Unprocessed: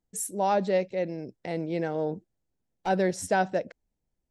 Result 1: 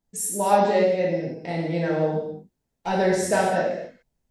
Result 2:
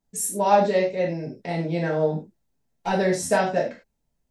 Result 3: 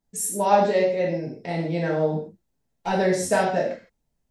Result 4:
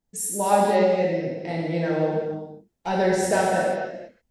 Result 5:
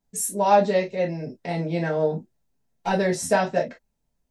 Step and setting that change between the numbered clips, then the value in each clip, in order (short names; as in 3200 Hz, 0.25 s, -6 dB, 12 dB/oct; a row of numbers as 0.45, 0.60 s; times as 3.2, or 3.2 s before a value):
non-linear reverb, gate: 320, 130, 190, 510, 80 ms